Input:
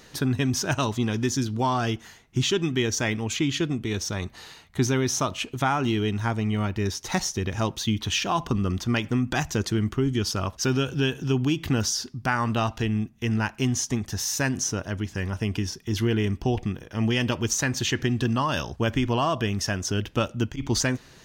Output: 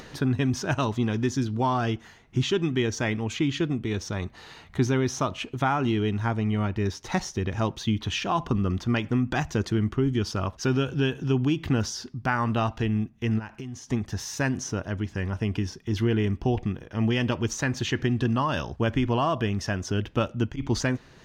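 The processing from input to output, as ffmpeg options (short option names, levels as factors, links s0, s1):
-filter_complex "[0:a]asplit=3[s0][s1][s2];[s0]afade=t=out:st=13.38:d=0.02[s3];[s1]acompressor=threshold=0.0251:ratio=10:attack=3.2:release=140:knee=1:detection=peak,afade=t=in:st=13.38:d=0.02,afade=t=out:st=13.89:d=0.02[s4];[s2]afade=t=in:st=13.89:d=0.02[s5];[s3][s4][s5]amix=inputs=3:normalize=0,lowpass=f=2500:p=1,acompressor=mode=upward:threshold=0.0141:ratio=2.5"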